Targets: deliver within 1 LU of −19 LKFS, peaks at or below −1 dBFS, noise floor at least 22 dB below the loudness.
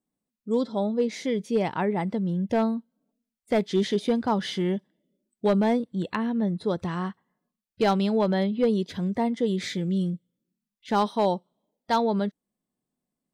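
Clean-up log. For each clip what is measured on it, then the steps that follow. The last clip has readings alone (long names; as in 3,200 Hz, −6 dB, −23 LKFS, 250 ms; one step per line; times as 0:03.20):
share of clipped samples 0.4%; peaks flattened at −15.0 dBFS; integrated loudness −26.5 LKFS; sample peak −15.0 dBFS; target loudness −19.0 LKFS
→ clipped peaks rebuilt −15 dBFS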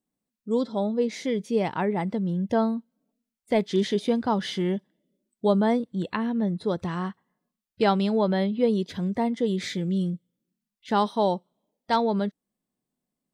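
share of clipped samples 0.0%; integrated loudness −26.0 LKFS; sample peak −9.0 dBFS; target loudness −19.0 LKFS
→ level +7 dB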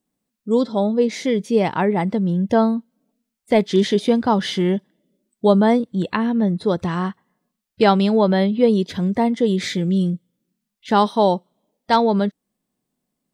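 integrated loudness −19.0 LKFS; sample peak −2.0 dBFS; background noise floor −80 dBFS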